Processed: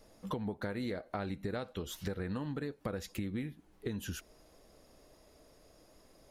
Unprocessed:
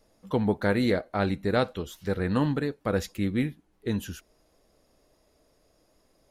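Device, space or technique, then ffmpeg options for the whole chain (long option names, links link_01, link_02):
serial compression, peaks first: -af "acompressor=threshold=-34dB:ratio=5,acompressor=threshold=-40dB:ratio=2.5,volume=4dB"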